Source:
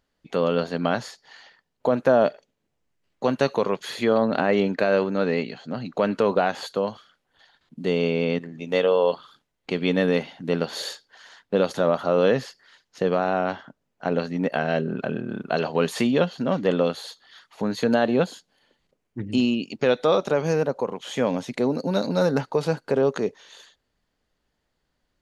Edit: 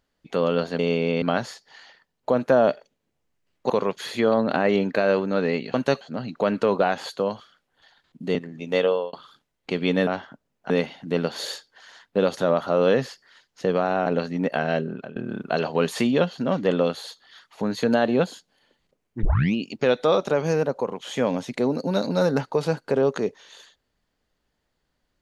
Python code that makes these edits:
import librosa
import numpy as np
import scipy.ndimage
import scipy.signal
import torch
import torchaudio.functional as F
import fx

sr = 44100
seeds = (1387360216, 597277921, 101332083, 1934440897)

y = fx.edit(x, sr, fx.move(start_s=3.27, length_s=0.27, to_s=5.58),
    fx.move(start_s=7.92, length_s=0.43, to_s=0.79),
    fx.fade_out_span(start_s=8.86, length_s=0.27),
    fx.move(start_s=13.43, length_s=0.63, to_s=10.07),
    fx.fade_out_to(start_s=14.74, length_s=0.42, floor_db=-17.5),
    fx.tape_start(start_s=19.23, length_s=0.32), tone=tone)